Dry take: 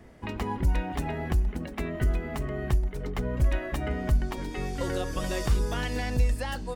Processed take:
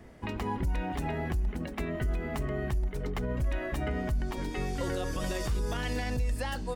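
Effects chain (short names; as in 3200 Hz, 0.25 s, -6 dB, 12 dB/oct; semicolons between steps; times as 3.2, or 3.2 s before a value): limiter -23 dBFS, peak gain reduction 8 dB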